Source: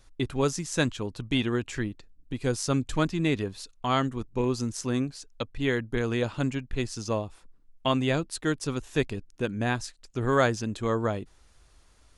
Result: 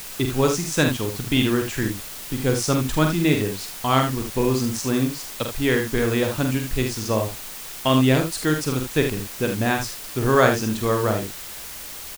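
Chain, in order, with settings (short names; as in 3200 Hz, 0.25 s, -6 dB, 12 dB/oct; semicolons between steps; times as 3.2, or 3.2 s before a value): early reflections 46 ms -6 dB, 77 ms -8 dB; added noise white -41 dBFS; gain +5 dB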